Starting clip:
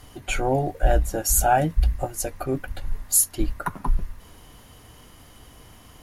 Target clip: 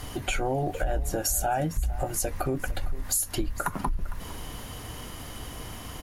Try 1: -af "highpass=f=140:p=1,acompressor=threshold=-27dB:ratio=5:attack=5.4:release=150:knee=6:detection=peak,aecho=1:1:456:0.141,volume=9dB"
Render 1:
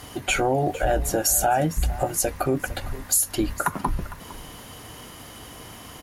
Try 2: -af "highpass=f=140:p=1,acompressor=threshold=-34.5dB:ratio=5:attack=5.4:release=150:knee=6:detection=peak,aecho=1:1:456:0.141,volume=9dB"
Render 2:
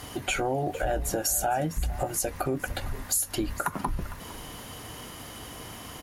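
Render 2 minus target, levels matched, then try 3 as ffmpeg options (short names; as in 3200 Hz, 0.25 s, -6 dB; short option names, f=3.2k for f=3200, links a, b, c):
125 Hz band -3.5 dB
-af "acompressor=threshold=-34.5dB:ratio=5:attack=5.4:release=150:knee=6:detection=peak,aecho=1:1:456:0.141,volume=9dB"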